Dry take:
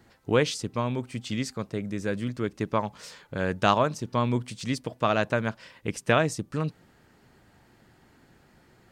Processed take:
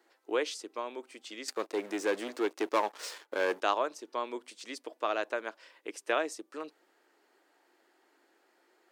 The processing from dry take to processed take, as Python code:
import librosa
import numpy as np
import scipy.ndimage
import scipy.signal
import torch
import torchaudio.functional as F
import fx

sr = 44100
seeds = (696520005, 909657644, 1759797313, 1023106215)

y = fx.leveller(x, sr, passes=3, at=(1.48, 3.61))
y = scipy.signal.sosfilt(scipy.signal.ellip(4, 1.0, 80, 320.0, 'highpass', fs=sr, output='sos'), y)
y = y * librosa.db_to_amplitude(-6.5)